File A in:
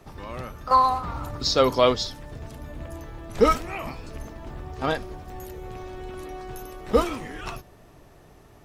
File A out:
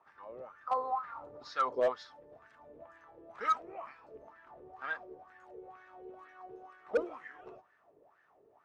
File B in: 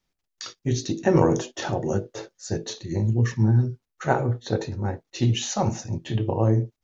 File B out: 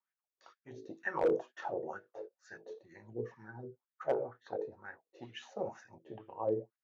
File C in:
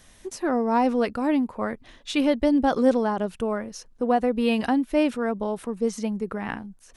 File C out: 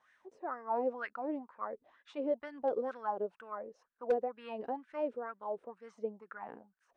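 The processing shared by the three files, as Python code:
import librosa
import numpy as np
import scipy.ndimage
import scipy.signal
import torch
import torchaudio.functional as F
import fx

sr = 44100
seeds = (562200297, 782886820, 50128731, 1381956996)

y = fx.wah_lfo(x, sr, hz=2.1, low_hz=430.0, high_hz=1700.0, q=5.3)
y = np.clip(10.0 ** (20.5 / 20.0) * y, -1.0, 1.0) / 10.0 ** (20.5 / 20.0)
y = scipy.signal.sosfilt(scipy.signal.cheby1(8, 1.0, 9800.0, 'lowpass', fs=sr, output='sos'), y)
y = y * librosa.db_to_amplitude(-1.0)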